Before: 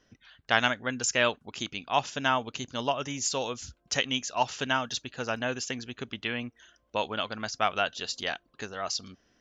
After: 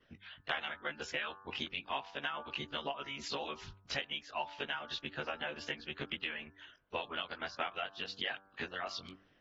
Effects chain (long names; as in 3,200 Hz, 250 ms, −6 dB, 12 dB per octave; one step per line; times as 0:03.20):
every overlapping window played backwards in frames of 43 ms
low-pass filter 3,200 Hz 24 dB per octave
harmonic and percussive parts rebalanced harmonic −17 dB
high-shelf EQ 2,400 Hz +10 dB
hum removal 97.17 Hz, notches 18
downward compressor 5 to 1, threshold −42 dBFS, peak gain reduction 18 dB
level +5.5 dB
AAC 32 kbit/s 48,000 Hz